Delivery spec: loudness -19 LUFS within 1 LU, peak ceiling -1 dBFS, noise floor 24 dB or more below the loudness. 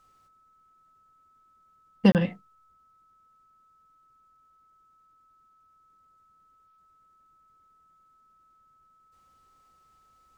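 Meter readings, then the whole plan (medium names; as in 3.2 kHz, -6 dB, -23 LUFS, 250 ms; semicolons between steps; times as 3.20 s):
dropouts 1; longest dropout 28 ms; steady tone 1.3 kHz; tone level -60 dBFS; loudness -24.0 LUFS; peak level -6.5 dBFS; loudness target -19.0 LUFS
-> interpolate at 2.12 s, 28 ms; band-stop 1.3 kHz, Q 30; trim +5 dB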